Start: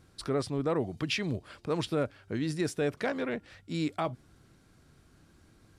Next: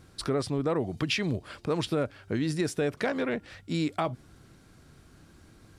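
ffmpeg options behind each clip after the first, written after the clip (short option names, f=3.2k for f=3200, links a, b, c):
-af "acompressor=threshold=-31dB:ratio=2.5,volume=5.5dB"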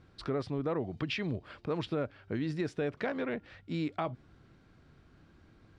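-af "lowpass=3.5k,volume=-5dB"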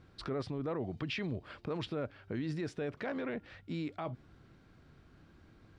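-af "alimiter=level_in=5dB:limit=-24dB:level=0:latency=1:release=19,volume=-5dB"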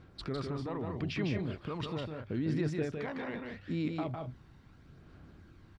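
-af "aphaser=in_gain=1:out_gain=1:delay=1.1:decay=0.43:speed=0.78:type=sinusoidal,aecho=1:1:154.5|186.6:0.631|0.316,volume=-1dB"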